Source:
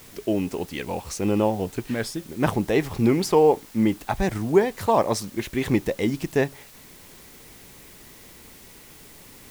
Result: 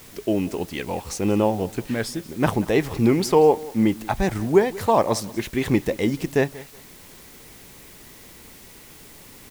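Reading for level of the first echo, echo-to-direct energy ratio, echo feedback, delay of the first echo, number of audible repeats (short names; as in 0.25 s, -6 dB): -20.0 dB, -20.0 dB, 22%, 0.185 s, 2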